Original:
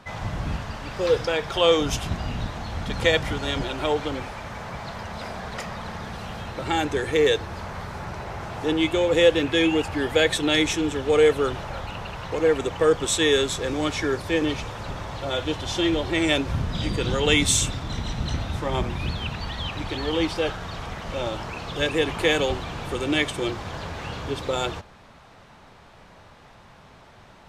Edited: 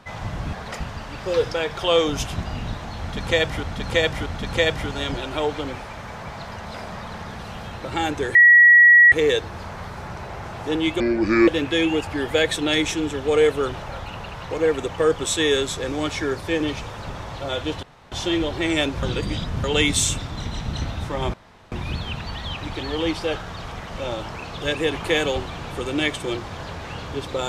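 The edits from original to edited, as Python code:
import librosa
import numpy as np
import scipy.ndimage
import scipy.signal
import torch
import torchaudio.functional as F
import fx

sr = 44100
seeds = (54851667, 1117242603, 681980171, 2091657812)

y = fx.edit(x, sr, fx.repeat(start_s=2.73, length_s=0.63, count=3),
    fx.move(start_s=5.39, length_s=0.27, to_s=0.53),
    fx.insert_tone(at_s=7.09, length_s=0.77, hz=1920.0, db=-7.5),
    fx.speed_span(start_s=8.97, length_s=0.32, speed=0.67),
    fx.insert_room_tone(at_s=15.64, length_s=0.29),
    fx.reverse_span(start_s=16.55, length_s=0.61),
    fx.insert_room_tone(at_s=18.86, length_s=0.38), tone=tone)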